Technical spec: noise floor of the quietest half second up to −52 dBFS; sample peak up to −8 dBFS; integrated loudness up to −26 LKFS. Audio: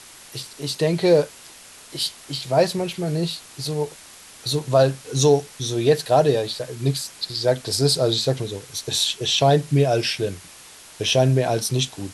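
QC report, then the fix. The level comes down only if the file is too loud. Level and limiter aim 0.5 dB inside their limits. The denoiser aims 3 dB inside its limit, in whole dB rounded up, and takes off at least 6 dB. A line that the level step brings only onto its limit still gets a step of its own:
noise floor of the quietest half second −45 dBFS: out of spec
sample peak −5.5 dBFS: out of spec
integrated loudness −21.5 LKFS: out of spec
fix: broadband denoise 6 dB, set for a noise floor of −45 dBFS
level −5 dB

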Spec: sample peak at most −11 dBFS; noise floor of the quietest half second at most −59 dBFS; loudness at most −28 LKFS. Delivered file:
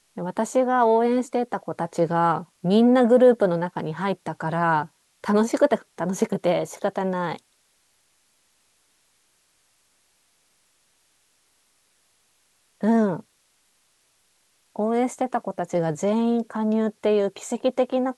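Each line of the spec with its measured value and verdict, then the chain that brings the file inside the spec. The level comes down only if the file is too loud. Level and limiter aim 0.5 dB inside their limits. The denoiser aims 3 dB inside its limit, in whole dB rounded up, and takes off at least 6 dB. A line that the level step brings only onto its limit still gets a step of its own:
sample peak −6.5 dBFS: out of spec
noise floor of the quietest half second −66 dBFS: in spec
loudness −23.0 LKFS: out of spec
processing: level −5.5 dB

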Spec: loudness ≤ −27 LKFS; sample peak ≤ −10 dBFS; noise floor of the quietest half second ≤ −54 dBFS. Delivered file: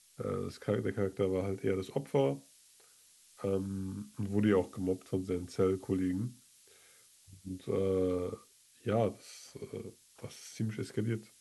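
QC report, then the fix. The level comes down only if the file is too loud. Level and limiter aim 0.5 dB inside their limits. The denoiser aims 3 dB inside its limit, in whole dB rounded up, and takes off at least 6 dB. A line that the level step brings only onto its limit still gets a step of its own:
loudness −34.5 LKFS: in spec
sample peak −16.0 dBFS: in spec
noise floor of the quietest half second −62 dBFS: in spec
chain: no processing needed

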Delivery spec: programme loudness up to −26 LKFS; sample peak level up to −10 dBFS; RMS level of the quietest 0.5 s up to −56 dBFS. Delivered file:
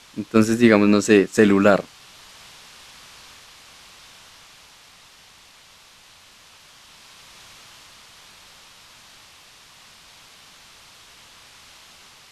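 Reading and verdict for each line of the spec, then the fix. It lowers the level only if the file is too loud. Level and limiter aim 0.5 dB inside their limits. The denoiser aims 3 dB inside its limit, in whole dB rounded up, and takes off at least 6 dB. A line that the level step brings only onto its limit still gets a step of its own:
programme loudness −16.5 LKFS: out of spec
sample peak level −2.0 dBFS: out of spec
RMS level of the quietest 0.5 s −50 dBFS: out of spec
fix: level −10 dB

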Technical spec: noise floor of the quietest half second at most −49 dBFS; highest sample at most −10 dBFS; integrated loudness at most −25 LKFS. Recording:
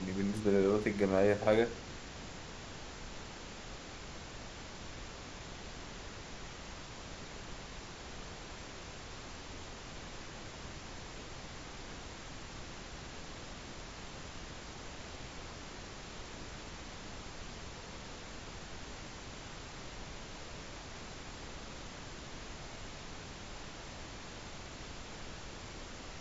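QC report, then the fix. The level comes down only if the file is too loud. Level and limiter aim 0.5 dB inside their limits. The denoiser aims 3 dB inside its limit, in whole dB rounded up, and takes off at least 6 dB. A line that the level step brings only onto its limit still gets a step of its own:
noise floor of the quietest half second −47 dBFS: out of spec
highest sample −14.0 dBFS: in spec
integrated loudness −41.5 LKFS: in spec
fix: broadband denoise 6 dB, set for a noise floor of −47 dBFS

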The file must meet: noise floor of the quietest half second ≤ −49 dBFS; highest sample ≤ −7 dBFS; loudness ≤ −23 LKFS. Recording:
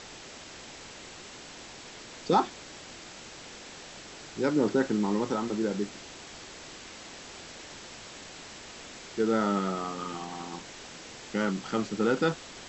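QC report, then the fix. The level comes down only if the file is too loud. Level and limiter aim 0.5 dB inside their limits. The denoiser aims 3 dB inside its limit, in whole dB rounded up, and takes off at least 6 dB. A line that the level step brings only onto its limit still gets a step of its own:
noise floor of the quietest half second −46 dBFS: out of spec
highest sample −11.0 dBFS: in spec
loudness −29.5 LKFS: in spec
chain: broadband denoise 6 dB, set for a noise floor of −46 dBFS

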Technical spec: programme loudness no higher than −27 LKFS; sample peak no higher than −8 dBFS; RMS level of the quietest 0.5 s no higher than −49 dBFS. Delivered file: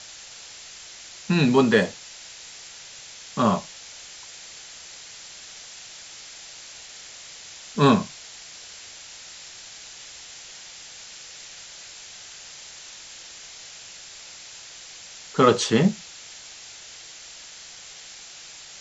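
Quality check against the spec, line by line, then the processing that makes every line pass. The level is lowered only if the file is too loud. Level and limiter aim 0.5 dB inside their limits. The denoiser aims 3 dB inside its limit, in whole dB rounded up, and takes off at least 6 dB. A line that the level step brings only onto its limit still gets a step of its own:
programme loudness −21.5 LKFS: out of spec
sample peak −3.5 dBFS: out of spec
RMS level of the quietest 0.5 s −43 dBFS: out of spec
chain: broadband denoise 6 dB, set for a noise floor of −43 dBFS
level −6 dB

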